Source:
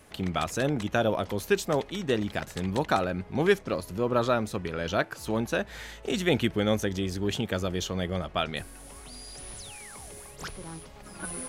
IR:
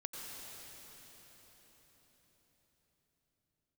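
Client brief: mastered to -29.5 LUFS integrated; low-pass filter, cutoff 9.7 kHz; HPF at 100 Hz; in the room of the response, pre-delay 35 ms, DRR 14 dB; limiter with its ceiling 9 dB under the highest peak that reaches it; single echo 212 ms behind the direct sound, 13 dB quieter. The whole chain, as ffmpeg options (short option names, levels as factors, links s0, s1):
-filter_complex "[0:a]highpass=100,lowpass=9700,alimiter=limit=0.126:level=0:latency=1,aecho=1:1:212:0.224,asplit=2[s0][s1];[1:a]atrim=start_sample=2205,adelay=35[s2];[s1][s2]afir=irnorm=-1:irlink=0,volume=0.211[s3];[s0][s3]amix=inputs=2:normalize=0,volume=1.33"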